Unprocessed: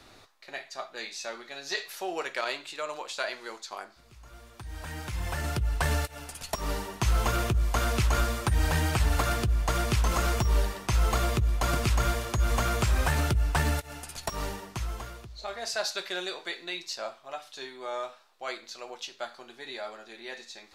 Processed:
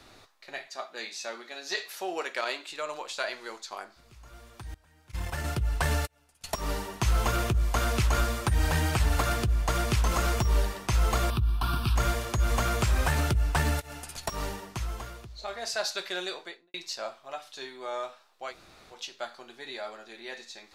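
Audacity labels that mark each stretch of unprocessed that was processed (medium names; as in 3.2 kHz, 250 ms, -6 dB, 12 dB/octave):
0.670000	2.710000	brick-wall FIR high-pass 160 Hz
4.740000	6.440000	gate -33 dBFS, range -23 dB
11.300000	11.960000	static phaser centre 2 kHz, stages 6
16.320000	16.740000	studio fade out
18.500000	18.940000	room tone, crossfade 0.10 s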